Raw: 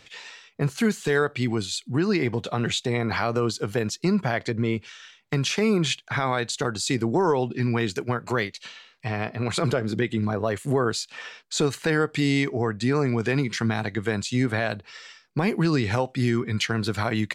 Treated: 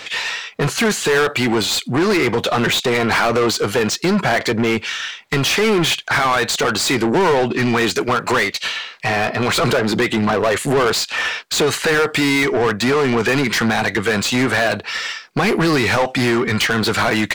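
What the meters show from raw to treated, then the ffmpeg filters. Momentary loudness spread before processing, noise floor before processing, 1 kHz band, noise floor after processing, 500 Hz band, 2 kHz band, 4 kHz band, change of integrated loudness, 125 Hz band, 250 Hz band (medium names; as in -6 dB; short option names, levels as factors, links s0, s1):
8 LU, -57 dBFS, +10.5 dB, -37 dBFS, +8.5 dB, +11.5 dB, +11.5 dB, +8.0 dB, +2.0 dB, +6.0 dB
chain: -filter_complex "[0:a]asplit=2[s0][s1];[s1]highpass=f=720:p=1,volume=20,asoftclip=type=tanh:threshold=0.266[s2];[s0][s2]amix=inputs=2:normalize=0,lowpass=f=3100:p=1,volume=0.501,highshelf=f=8400:g=6,volume=1.41"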